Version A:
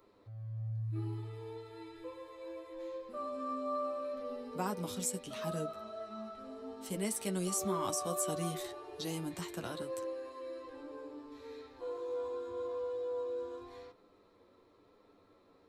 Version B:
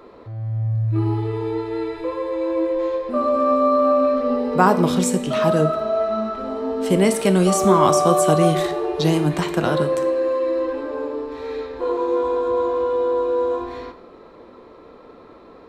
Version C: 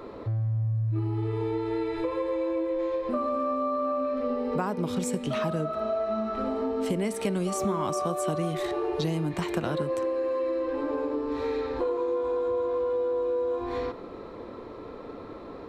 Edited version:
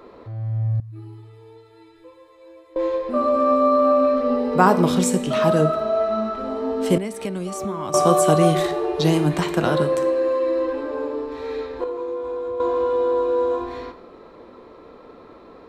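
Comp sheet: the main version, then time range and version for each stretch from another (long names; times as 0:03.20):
B
0:00.80–0:02.76: punch in from A
0:06.98–0:07.94: punch in from C
0:11.84–0:12.60: punch in from C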